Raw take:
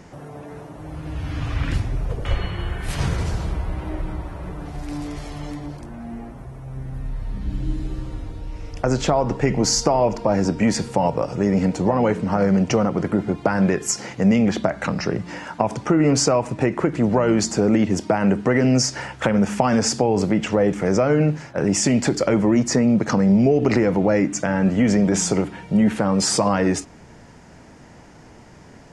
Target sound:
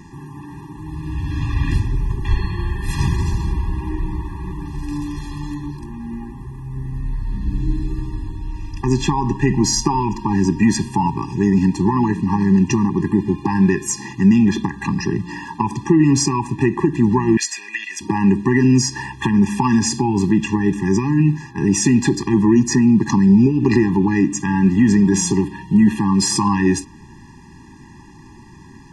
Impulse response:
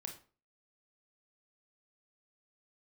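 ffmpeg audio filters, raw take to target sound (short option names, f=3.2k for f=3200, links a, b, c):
-filter_complex "[0:a]asettb=1/sr,asplit=3[a][b][c];[a]atrim=end=17.374[d];[b]atrim=start=17.37:end=18.01,asetpts=PTS-STARTPTS,afade=t=in:d=0.004:c=qsin,afade=t=out:st=0.636:d=0.004:c=qsin,highpass=f=2.1k:t=q:w=4[e];[c]atrim=start=18.006[f];[d][e]acrossfade=d=0.004:c1=hsin:c2=qsin[g];[g][f]acrossfade=d=0.004:c1=qsin:c2=hsin,afftfilt=real='re*eq(mod(floor(b*sr/1024/400),2),0)':imag='im*eq(mod(floor(b*sr/1024/400),2),0)':win_size=1024:overlap=0.75,volume=4.5dB"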